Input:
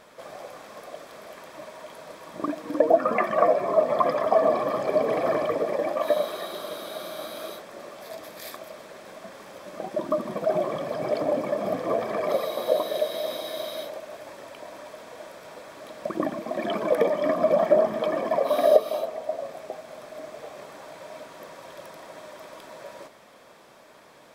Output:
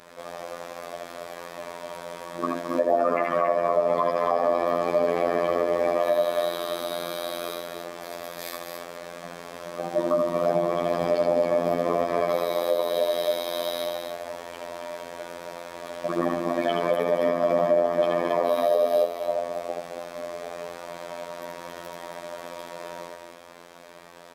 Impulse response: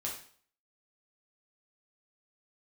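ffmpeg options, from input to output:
-filter_complex "[0:a]asplit=2[a][b];[b]aecho=0:1:75.8|215.7|274.1:0.631|0.282|0.501[c];[a][c]amix=inputs=2:normalize=0,afftfilt=real='hypot(re,im)*cos(PI*b)':imag='0':win_size=2048:overlap=0.75,alimiter=limit=-14.5dB:level=0:latency=1:release=346,volume=5.5dB"

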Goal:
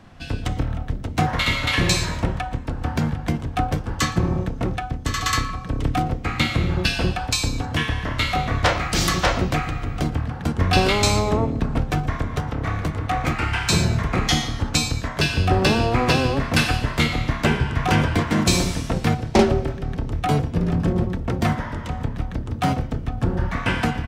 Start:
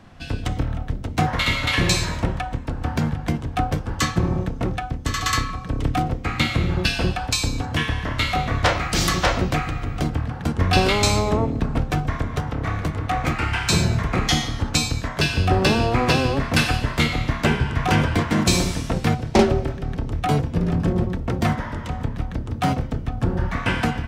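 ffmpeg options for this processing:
-filter_complex "[0:a]asplit=2[a][b];[b]adelay=116.6,volume=-23dB,highshelf=f=4k:g=-2.62[c];[a][c]amix=inputs=2:normalize=0"

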